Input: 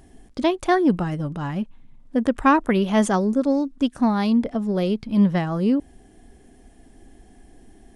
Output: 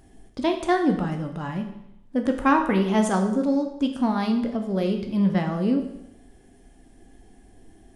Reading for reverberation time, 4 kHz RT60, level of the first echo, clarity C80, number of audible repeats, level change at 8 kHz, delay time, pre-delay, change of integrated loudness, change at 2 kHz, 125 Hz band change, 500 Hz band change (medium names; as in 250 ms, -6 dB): 0.80 s, 0.75 s, no echo, 10.5 dB, no echo, -2.0 dB, no echo, 11 ms, -2.5 dB, -2.0 dB, -2.0 dB, -2.5 dB